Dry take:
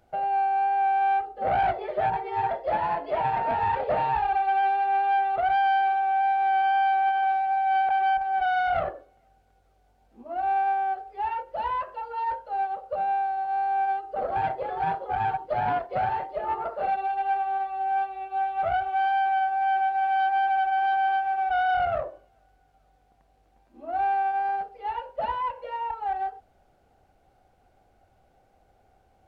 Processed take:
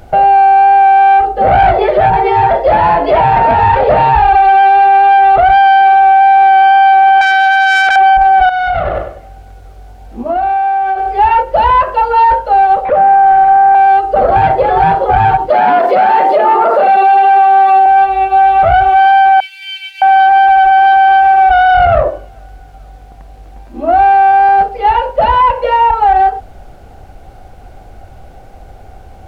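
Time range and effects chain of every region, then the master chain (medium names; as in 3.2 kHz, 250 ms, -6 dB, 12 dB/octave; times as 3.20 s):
7.21–7.96 s: self-modulated delay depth 0.3 ms + high-pass 400 Hz 6 dB/octave
8.49–11.19 s: feedback delay 96 ms, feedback 30%, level -9.5 dB + compression 12:1, threshold -34 dBFS
12.85–13.75 s: one-bit delta coder 64 kbps, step -32 dBFS + low-pass 1.8 kHz 24 dB/octave + bass shelf 70 Hz -12 dB
15.50–17.86 s: steep high-pass 200 Hz + level flattener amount 50%
19.40–20.02 s: elliptic high-pass 2.2 kHz + comb 7.1 ms, depth 58%
whole clip: bass shelf 96 Hz +11.5 dB; loudness maximiser +24.5 dB; trim -1 dB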